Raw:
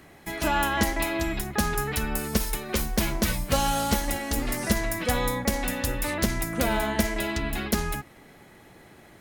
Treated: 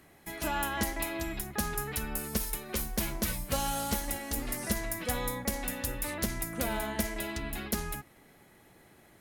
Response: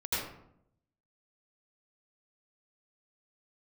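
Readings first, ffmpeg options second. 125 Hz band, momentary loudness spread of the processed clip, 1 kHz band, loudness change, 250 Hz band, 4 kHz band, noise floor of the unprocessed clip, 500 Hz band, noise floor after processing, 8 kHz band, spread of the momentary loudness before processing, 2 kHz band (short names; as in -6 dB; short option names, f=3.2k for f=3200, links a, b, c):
-8.0 dB, 3 LU, -8.0 dB, -6.5 dB, -8.0 dB, -7.5 dB, -52 dBFS, -8.0 dB, -59 dBFS, -4.0 dB, 4 LU, -8.0 dB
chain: -af "equalizer=f=12k:t=o:w=0.95:g=7,volume=-8dB"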